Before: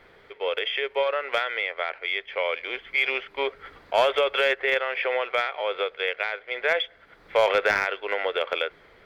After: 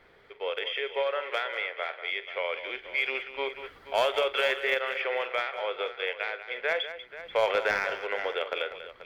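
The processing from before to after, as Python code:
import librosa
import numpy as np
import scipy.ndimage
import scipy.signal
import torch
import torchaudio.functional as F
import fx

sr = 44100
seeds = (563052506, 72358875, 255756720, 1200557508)

y = fx.highpass(x, sr, hz=280.0, slope=24, at=(1.12, 2.13))
y = fx.high_shelf(y, sr, hz=5900.0, db=8.0, at=(3.52, 5.33))
y = fx.echo_multitap(y, sr, ms=(45, 191, 484), db=(-14.0, -12.0, -14.5))
y = y * 10.0 ** (-5.0 / 20.0)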